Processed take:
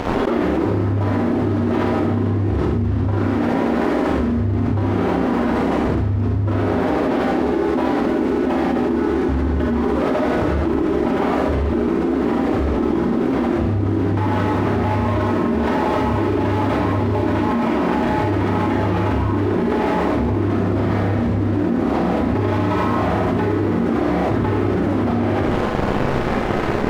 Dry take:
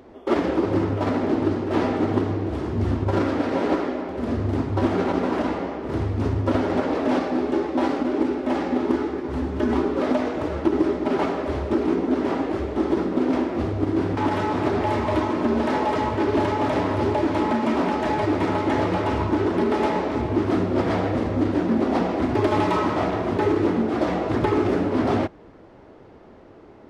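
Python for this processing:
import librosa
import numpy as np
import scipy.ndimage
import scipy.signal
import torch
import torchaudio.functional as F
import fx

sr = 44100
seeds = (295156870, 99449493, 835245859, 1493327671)

y = fx.lowpass(x, sr, hz=1300.0, slope=6)
y = fx.peak_eq(y, sr, hz=520.0, db=-7.5, octaves=2.3)
y = np.sign(y) * np.maximum(np.abs(y) - 10.0 ** (-51.0 / 20.0), 0.0)
y = y + 10.0 ** (-8.0 / 20.0) * np.pad(y, (int(80 * sr / 1000.0), 0))[:len(y)]
y = fx.rev_schroeder(y, sr, rt60_s=0.33, comb_ms=30, drr_db=1.0)
y = fx.env_flatten(y, sr, amount_pct=100)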